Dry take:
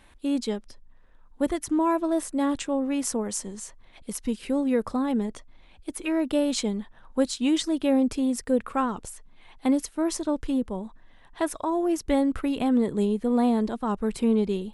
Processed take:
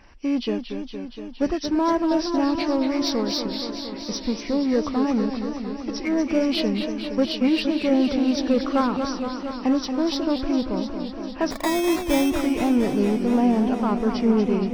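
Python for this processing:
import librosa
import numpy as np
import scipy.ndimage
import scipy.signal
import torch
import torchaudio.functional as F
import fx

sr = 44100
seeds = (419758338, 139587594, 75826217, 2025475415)

p1 = fx.freq_compress(x, sr, knee_hz=1600.0, ratio=1.5)
p2 = np.clip(p1, -10.0 ** (-28.5 / 20.0), 10.0 ** (-28.5 / 20.0))
p3 = p1 + (p2 * 10.0 ** (-3.5 / 20.0))
p4 = fx.sample_hold(p3, sr, seeds[0], rate_hz=2900.0, jitter_pct=0, at=(11.5, 12.29), fade=0.02)
y = fx.echo_warbled(p4, sr, ms=233, feedback_pct=77, rate_hz=2.8, cents=132, wet_db=-8)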